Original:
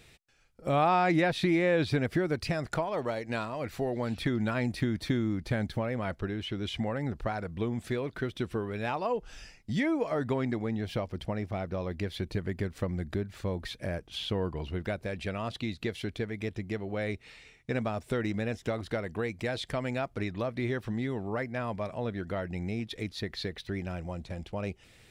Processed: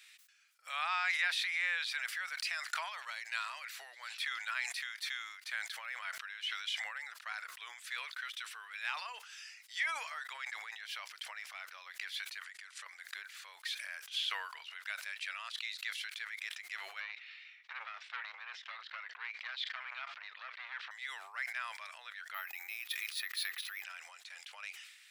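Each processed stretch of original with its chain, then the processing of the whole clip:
12.44–12.86 s: low-pass 9.5 kHz 24 dB/octave + treble shelf 6.3 kHz +8.5 dB + compression 2.5:1, threshold -42 dBFS
17.00–20.91 s: low-pass 4.1 kHz 24 dB/octave + transformer saturation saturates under 1.1 kHz
22.34–23.84 s: careless resampling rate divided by 3×, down none, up hold + small resonant body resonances 330/840/1200/2500 Hz, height 8 dB, ringing for 25 ms
whole clip: inverse Chebyshev high-pass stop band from 240 Hz, stop band 80 dB; decay stretcher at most 53 dB/s; trim +1 dB

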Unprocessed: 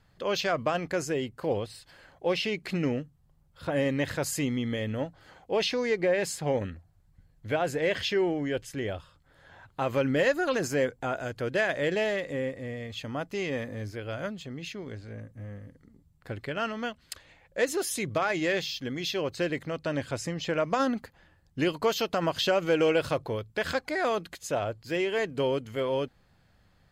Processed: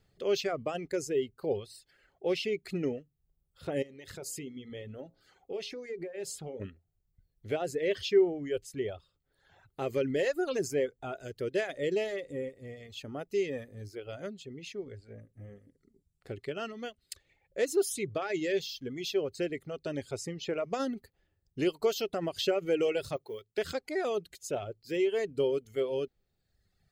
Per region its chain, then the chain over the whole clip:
3.82–6.60 s: compression 10:1, threshold -32 dBFS + de-hum 59.7 Hz, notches 21
14.11–16.61 s: low-pass 12 kHz + short-mantissa float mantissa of 8-bit
23.16–23.58 s: bass shelf 310 Hz -11 dB + short-mantissa float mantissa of 4-bit
whole clip: treble shelf 9.6 kHz +11 dB; reverb removal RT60 1.3 s; graphic EQ with 31 bands 400 Hz +11 dB, 1 kHz -10 dB, 1.6 kHz -6 dB, 12.5 kHz -9 dB; trim -5.5 dB

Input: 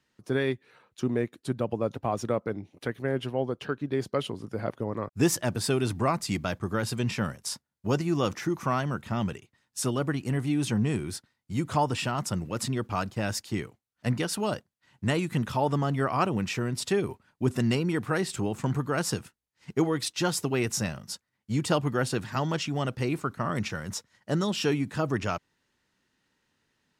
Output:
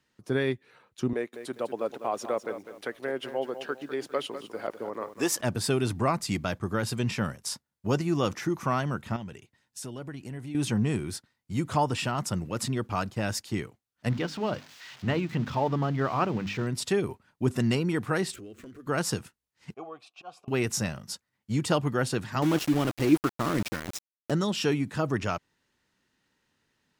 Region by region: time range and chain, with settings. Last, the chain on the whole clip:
1.13–5.41 s: high-pass 380 Hz + bit-crushed delay 201 ms, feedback 35%, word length 9-bit, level -10.5 dB
9.16–10.55 s: compression 2.5:1, threshold -40 dBFS + band-stop 1.2 kHz, Q 8
14.09–16.67 s: zero-crossing glitches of -25.5 dBFS + distance through air 210 m + hum notches 50/100/150/200/250/300 Hz
18.34–18.87 s: median filter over 9 samples + compression, threshold -36 dBFS + static phaser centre 360 Hz, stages 4
19.74–20.48 s: slow attack 112 ms + vowel filter a
22.42–24.31 s: peaking EQ 310 Hz +14.5 dB 0.31 oct + small samples zeroed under -30 dBFS
whole clip: none

